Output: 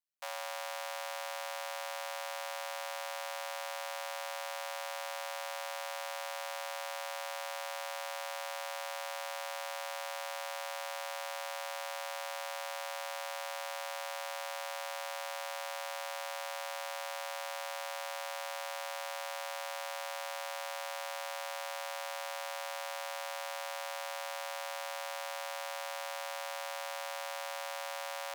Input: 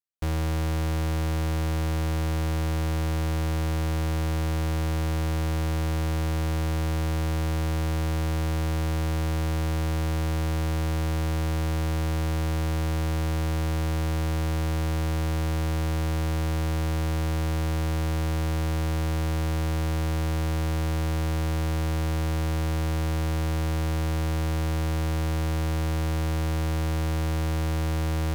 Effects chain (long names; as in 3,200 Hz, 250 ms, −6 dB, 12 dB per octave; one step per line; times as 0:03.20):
Chebyshev high-pass filter 530 Hz, order 8
level −2.5 dB